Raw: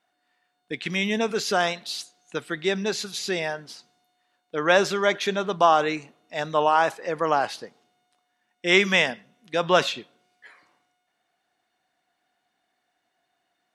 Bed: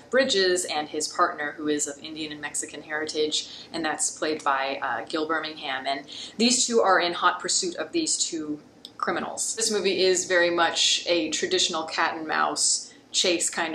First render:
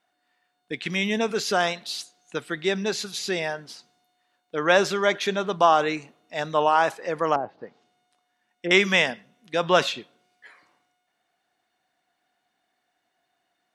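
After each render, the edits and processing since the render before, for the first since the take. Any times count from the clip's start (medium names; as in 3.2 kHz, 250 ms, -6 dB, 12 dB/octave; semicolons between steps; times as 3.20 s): 7.35–8.71 s: low-pass that closes with the level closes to 600 Hz, closed at -25 dBFS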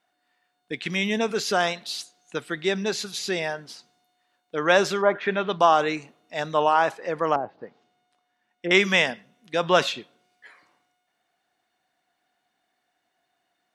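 5.01–5.58 s: resonant low-pass 890 Hz -> 4.3 kHz, resonance Q 1.8; 6.73–8.75 s: treble shelf 6.1 kHz -8 dB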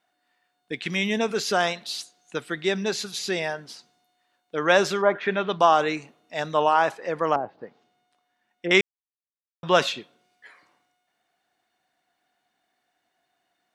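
8.81–9.63 s: mute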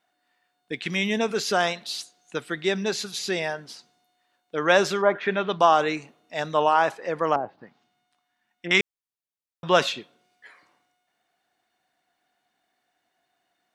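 7.55–8.80 s: peaking EQ 470 Hz -12 dB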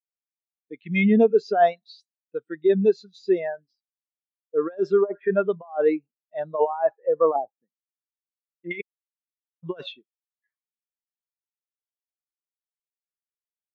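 compressor with a negative ratio -22 dBFS, ratio -0.5; spectral contrast expander 2.5:1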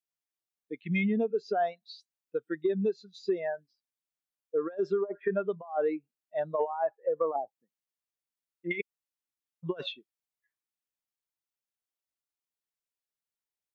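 compression 6:1, threshold -26 dBFS, peak gain reduction 13 dB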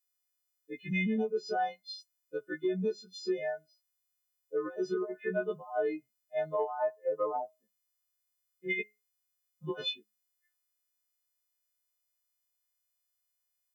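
partials quantised in pitch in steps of 3 st; feedback comb 210 Hz, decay 0.26 s, harmonics all, mix 30%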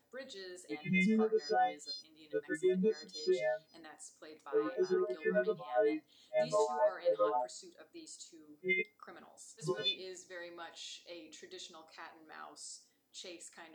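add bed -26.5 dB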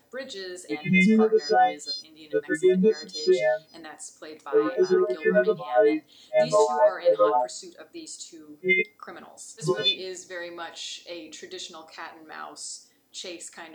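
trim +11.5 dB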